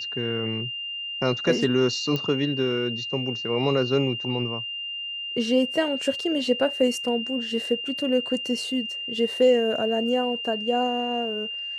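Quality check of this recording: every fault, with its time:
tone 2800 Hz -30 dBFS
2.16 pop -14 dBFS

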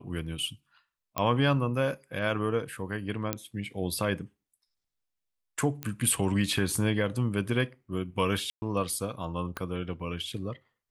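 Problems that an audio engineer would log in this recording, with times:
1.18 pop -13 dBFS
3.33 pop -12 dBFS
5.83 pop -17 dBFS
8.5–8.62 gap 0.12 s
9.57 pop -18 dBFS

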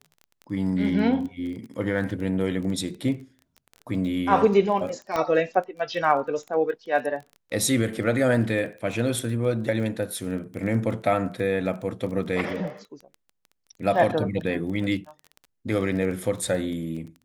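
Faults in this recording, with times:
crackle 16/s -33 dBFS
5.16 pop -13 dBFS

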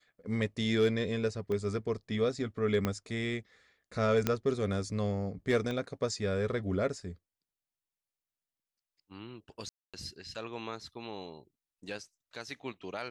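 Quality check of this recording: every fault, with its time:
1.52 pop -25 dBFS
2.85 pop -16 dBFS
4.27 pop -13 dBFS
5.71 pop -24 dBFS
9.69–9.94 gap 0.246 s

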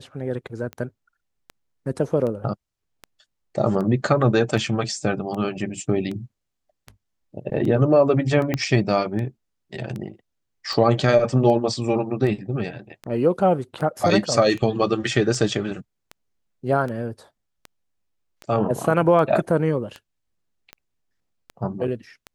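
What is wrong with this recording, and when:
tick 78 rpm -20 dBFS
8.54 pop -9 dBFS

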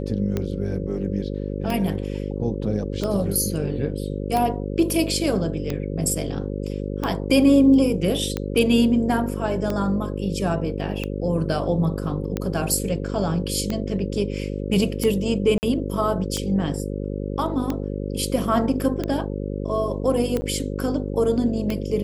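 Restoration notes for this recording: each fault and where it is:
buzz 50 Hz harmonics 11 -28 dBFS
tick 45 rpm -12 dBFS
15.58–15.63 gap 49 ms
20.41–20.42 gap 10 ms

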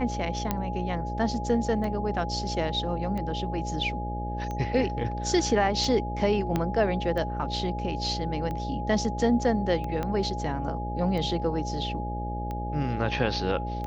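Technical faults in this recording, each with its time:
buzz 60 Hz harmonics 11 -33 dBFS
tick 45 rpm
tone 830 Hz -34 dBFS
0.51 pop -14 dBFS
6.56 pop -13 dBFS
10.03 pop -17 dBFS

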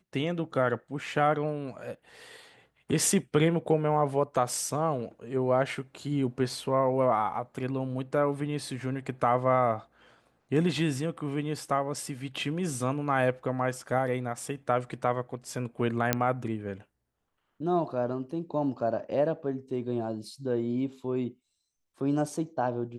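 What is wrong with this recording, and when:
16.13 pop -7 dBFS

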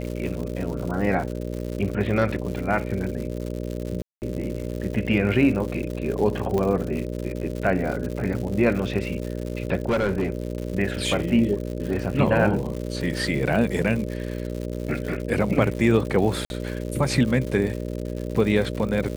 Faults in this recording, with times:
buzz 60 Hz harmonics 10 -30 dBFS
crackle 160/s -30 dBFS
4.02–4.22 gap 0.199 s
6.58 pop -14 dBFS
9.88–10.47 clipped -18 dBFS
16.45–16.5 gap 51 ms

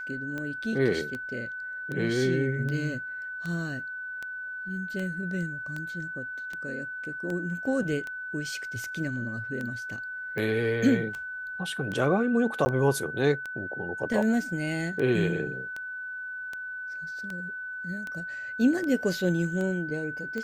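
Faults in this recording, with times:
tick 78 rpm -22 dBFS
tone 1500 Hz -34 dBFS
12.65–12.66 gap 10 ms

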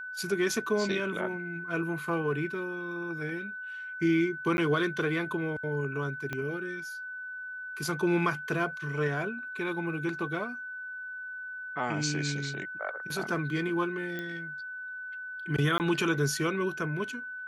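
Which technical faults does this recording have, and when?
tone 1500 Hz -37 dBFS
4.57–4.58 gap 11 ms
6.33 pop -20 dBFS
14.19 pop -23 dBFS
15.78–15.8 gap 19 ms

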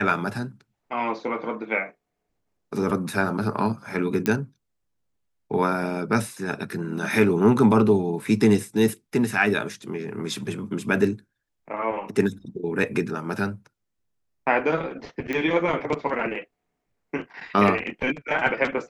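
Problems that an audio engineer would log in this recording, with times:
4.26 pop -9 dBFS
15.33 pop -15 dBFS

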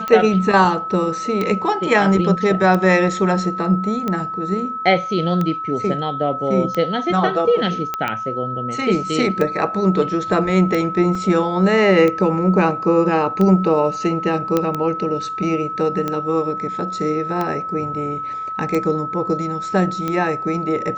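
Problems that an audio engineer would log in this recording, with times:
tick 45 rpm -10 dBFS
tone 1300 Hz -24 dBFS
7.94 pop -9 dBFS
11.15 gap 3.1 ms
14.57 pop -5 dBFS

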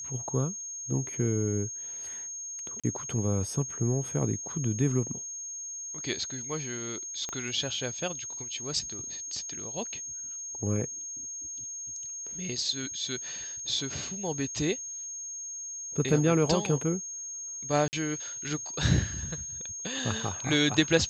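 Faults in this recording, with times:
tone 6500 Hz -36 dBFS
2.8–2.84 gap 36 ms
7.29 pop -21 dBFS
17.88–17.93 gap 49 ms

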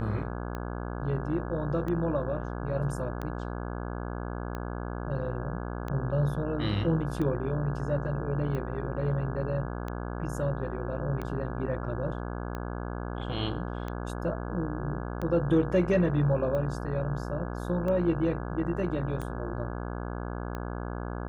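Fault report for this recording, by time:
buzz 60 Hz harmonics 28 -35 dBFS
tick 45 rpm -23 dBFS

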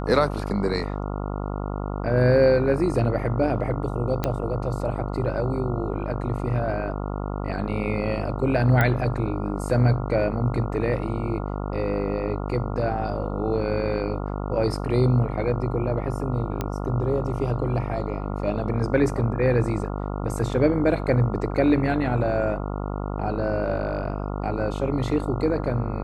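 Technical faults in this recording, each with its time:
buzz 50 Hz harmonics 28 -29 dBFS
4.24 pop -10 dBFS
8.81 pop -9 dBFS
16.61 pop -13 dBFS

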